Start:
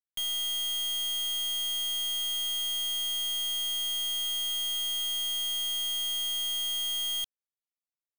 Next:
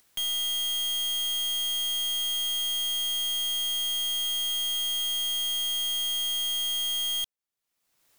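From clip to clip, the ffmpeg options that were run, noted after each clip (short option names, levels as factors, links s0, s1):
-af "acompressor=mode=upward:threshold=0.00631:ratio=2.5,volume=1.33"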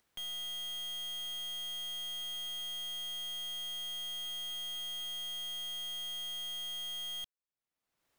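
-af "highshelf=f=3500:g=-11,volume=0.501"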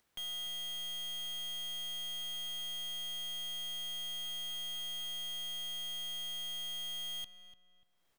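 -filter_complex "[0:a]asplit=2[s0][s1];[s1]adelay=294,lowpass=f=1900:p=1,volume=0.299,asplit=2[s2][s3];[s3]adelay=294,lowpass=f=1900:p=1,volume=0.38,asplit=2[s4][s5];[s5]adelay=294,lowpass=f=1900:p=1,volume=0.38,asplit=2[s6][s7];[s7]adelay=294,lowpass=f=1900:p=1,volume=0.38[s8];[s0][s2][s4][s6][s8]amix=inputs=5:normalize=0"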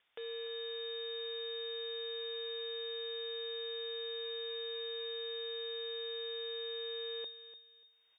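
-af "lowpass=f=3100:t=q:w=0.5098,lowpass=f=3100:t=q:w=0.6013,lowpass=f=3100:t=q:w=0.9,lowpass=f=3100:t=q:w=2.563,afreqshift=-3700,volume=1.33"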